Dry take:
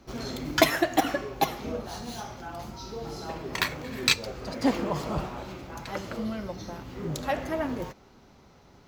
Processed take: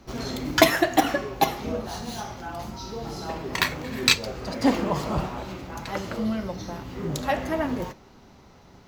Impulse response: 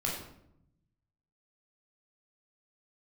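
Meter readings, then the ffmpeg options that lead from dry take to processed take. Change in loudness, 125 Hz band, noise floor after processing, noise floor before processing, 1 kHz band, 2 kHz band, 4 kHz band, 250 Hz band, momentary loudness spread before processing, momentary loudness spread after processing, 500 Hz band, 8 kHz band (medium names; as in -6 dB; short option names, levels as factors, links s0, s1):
+3.5 dB, +4.0 dB, -52 dBFS, -56 dBFS, +4.0 dB, +3.5 dB, +3.5 dB, +4.0 dB, 15 LU, 15 LU, +3.5 dB, +3.5 dB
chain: -filter_complex "[0:a]asplit=2[s0][s1];[1:a]atrim=start_sample=2205,atrim=end_sample=3969,asetrate=61740,aresample=44100[s2];[s1][s2]afir=irnorm=-1:irlink=0,volume=0.211[s3];[s0][s3]amix=inputs=2:normalize=0,volume=1.33"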